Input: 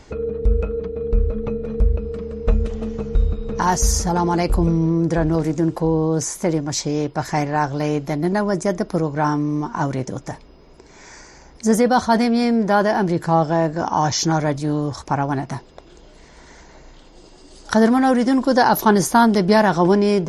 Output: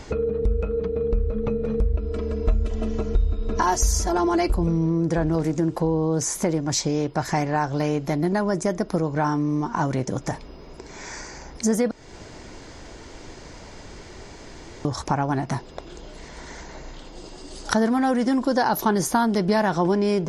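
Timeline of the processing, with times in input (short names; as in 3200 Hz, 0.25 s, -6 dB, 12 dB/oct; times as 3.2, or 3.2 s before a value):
1.93–4.52 comb 3 ms, depth 94%
11.91–14.85 room tone
whole clip: compressor 2.5:1, threshold -29 dBFS; gain +5.5 dB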